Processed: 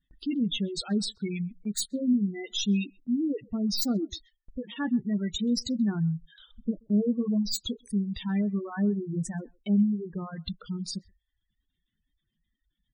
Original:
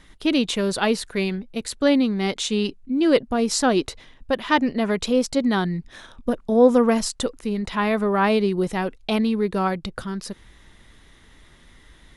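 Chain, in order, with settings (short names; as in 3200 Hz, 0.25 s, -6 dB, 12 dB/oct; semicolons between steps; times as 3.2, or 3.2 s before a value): tracing distortion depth 0.15 ms; low shelf 200 Hz -11.5 dB; doubler 23 ms -10 dB; in parallel at -5 dB: soft clip -15.5 dBFS, distortion -13 dB; on the sum: reverb removal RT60 0.92 s; spectral gate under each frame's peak -10 dB strong; varispeed -6%; EQ curve 190 Hz 0 dB, 520 Hz -23 dB, 920 Hz -26 dB, 7200 Hz +4 dB; speakerphone echo 0.13 s, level -27 dB; gate with hold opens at -48 dBFS; gain +2.5 dB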